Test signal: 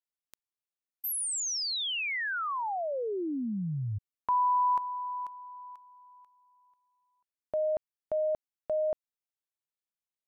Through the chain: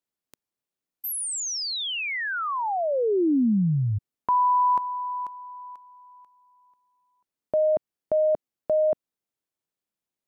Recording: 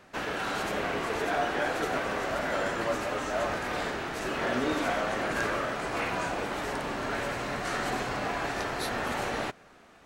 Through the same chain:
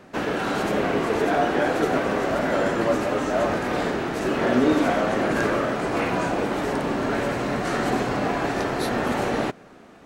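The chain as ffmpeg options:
ffmpeg -i in.wav -af "equalizer=frequency=250:width=0.44:gain=9.5,volume=2.5dB" out.wav

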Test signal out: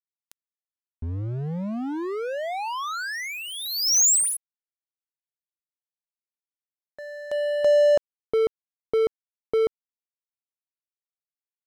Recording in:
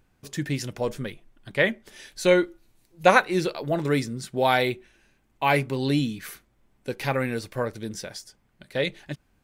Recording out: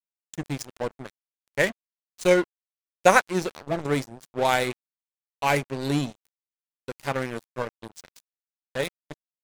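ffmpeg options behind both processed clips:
ffmpeg -i in.wav -af "adynamicsmooth=sensitivity=3:basefreq=4700,highshelf=frequency=5100:width_type=q:width=1.5:gain=9,aeval=exprs='sgn(val(0))*max(abs(val(0))-0.0316,0)':channel_layout=same,volume=1.5dB" out.wav

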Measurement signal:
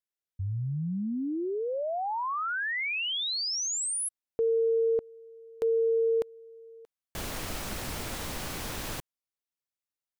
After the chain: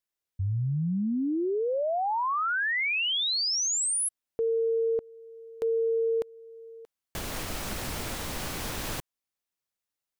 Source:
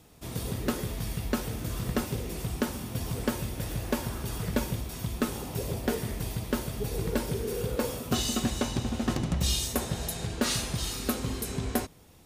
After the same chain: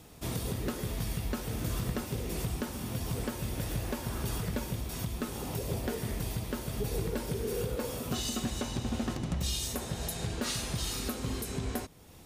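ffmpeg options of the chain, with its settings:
ffmpeg -i in.wav -af "alimiter=level_in=2.5dB:limit=-24dB:level=0:latency=1:release=419,volume=-2.5dB,volume=3.5dB" out.wav

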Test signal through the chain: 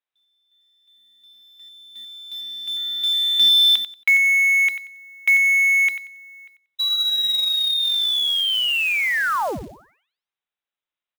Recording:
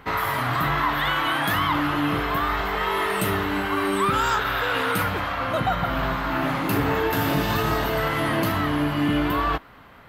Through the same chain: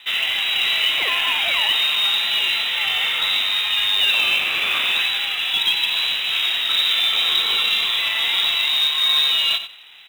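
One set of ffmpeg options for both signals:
ffmpeg -i in.wav -af "aecho=1:1:92|184|276:0.282|0.0592|0.0124,lowpass=frequency=3400:width_type=q:width=0.5098,lowpass=frequency=3400:width_type=q:width=0.6013,lowpass=frequency=3400:width_type=q:width=0.9,lowpass=frequency=3400:width_type=q:width=2.563,afreqshift=-4000,acrusher=bits=4:mode=log:mix=0:aa=0.000001,volume=3dB" out.wav

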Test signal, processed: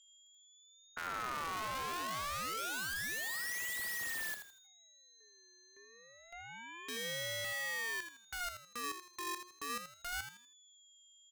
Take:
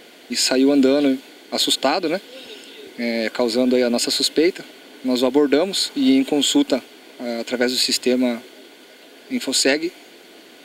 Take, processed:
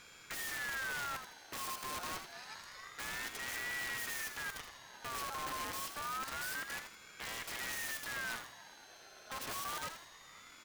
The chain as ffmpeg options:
ffmpeg -i in.wav -filter_complex "[0:a]aeval=exprs='(tanh(31.6*val(0)+0.75)-tanh(0.75))/31.6':channel_layout=same,aeval=exprs='(mod(23.7*val(0)+1,2)-1)/23.7':channel_layout=same,aeval=exprs='val(0)+0.00224*sin(2*PI*5200*n/s)':channel_layout=same,asplit=2[link_01][link_02];[link_02]aecho=0:1:81|162|243|324:0.376|0.117|0.0361|0.0112[link_03];[link_01][link_03]amix=inputs=2:normalize=0,aeval=exprs='val(0)*sin(2*PI*1500*n/s+1500*0.3/0.27*sin(2*PI*0.27*n/s))':channel_layout=same,volume=-6dB" out.wav

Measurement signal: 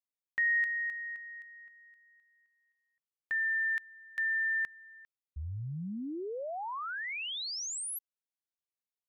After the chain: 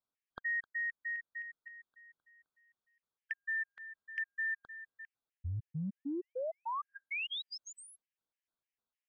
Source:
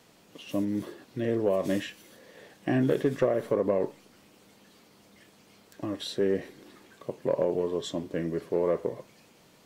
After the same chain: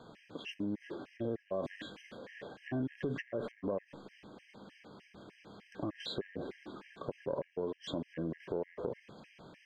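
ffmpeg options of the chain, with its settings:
ffmpeg -i in.wav -af "lowpass=2900,acompressor=threshold=-42dB:ratio=4:attack=3.8:release=51:knee=6:detection=peak,afftfilt=real='re*gt(sin(2*PI*3.3*pts/sr)*(1-2*mod(floor(b*sr/1024/1600),2)),0)':imag='im*gt(sin(2*PI*3.3*pts/sr)*(1-2*mod(floor(b*sr/1024/1600),2)),0)':win_size=1024:overlap=0.75,volume=6.5dB" out.wav

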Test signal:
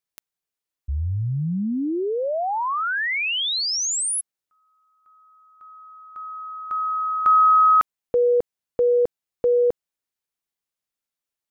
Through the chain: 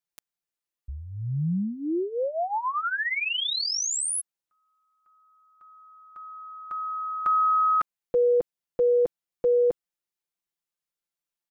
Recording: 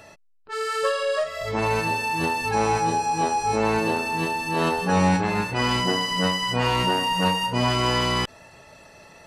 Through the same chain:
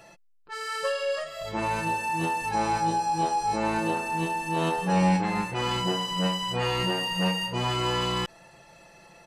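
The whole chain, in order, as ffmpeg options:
ffmpeg -i in.wav -af "aecho=1:1:5.8:0.68,volume=-5.5dB" out.wav

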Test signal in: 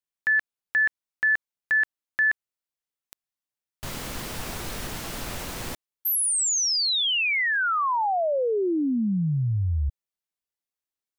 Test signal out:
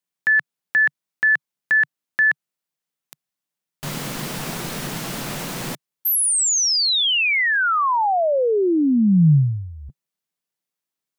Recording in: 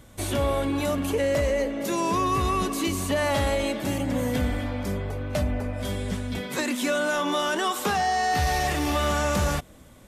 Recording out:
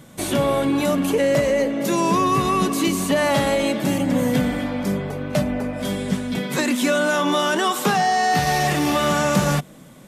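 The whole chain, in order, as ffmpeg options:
ffmpeg -i in.wav -af "lowshelf=frequency=110:width_type=q:width=3:gain=-10,volume=5dB" out.wav

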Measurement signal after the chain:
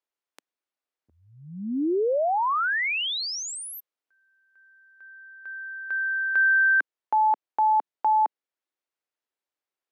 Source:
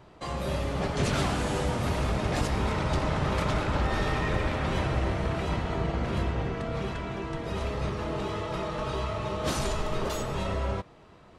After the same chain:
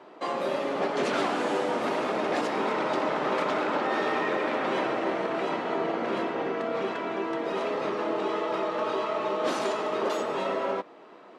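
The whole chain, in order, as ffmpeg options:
ffmpeg -i in.wav -filter_complex "[0:a]highpass=frequency=270:width=0.5412,highpass=frequency=270:width=1.3066,aemphasis=mode=reproduction:type=75kf,asplit=2[link_01][link_02];[link_02]alimiter=level_in=2.5dB:limit=-24dB:level=0:latency=1:release=407,volume=-2.5dB,volume=1.5dB[link_03];[link_01][link_03]amix=inputs=2:normalize=0" out.wav

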